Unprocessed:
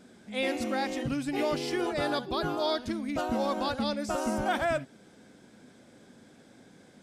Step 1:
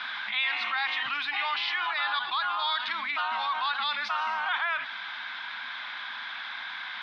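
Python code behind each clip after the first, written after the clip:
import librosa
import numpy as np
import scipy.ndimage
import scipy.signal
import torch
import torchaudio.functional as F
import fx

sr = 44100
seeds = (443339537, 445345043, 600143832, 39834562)

y = fx.rider(x, sr, range_db=10, speed_s=0.5)
y = scipy.signal.sosfilt(scipy.signal.ellip(3, 1.0, 40, [990.0, 3800.0], 'bandpass', fs=sr, output='sos'), y)
y = fx.env_flatten(y, sr, amount_pct=70)
y = y * 10.0 ** (5.0 / 20.0)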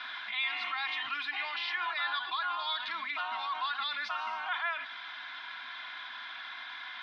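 y = x + 0.57 * np.pad(x, (int(2.9 * sr / 1000.0), 0))[:len(x)]
y = y * 10.0 ** (-6.5 / 20.0)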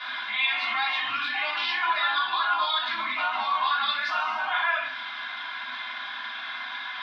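y = fx.room_shoebox(x, sr, seeds[0], volume_m3=420.0, walls='furnished', distance_m=5.4)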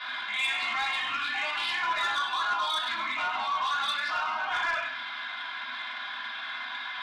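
y = 10.0 ** (-20.5 / 20.0) * np.tanh(x / 10.0 ** (-20.5 / 20.0))
y = y + 10.0 ** (-12.5 / 20.0) * np.pad(y, (int(98 * sr / 1000.0), 0))[:len(y)]
y = y * 10.0 ** (-1.5 / 20.0)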